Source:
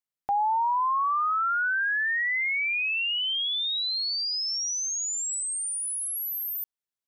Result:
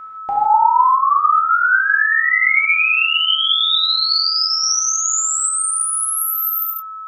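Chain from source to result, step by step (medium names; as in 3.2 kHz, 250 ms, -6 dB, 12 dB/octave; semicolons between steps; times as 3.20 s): whistle 1.3 kHz -39 dBFS; gated-style reverb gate 190 ms flat, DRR -5 dB; trim +5 dB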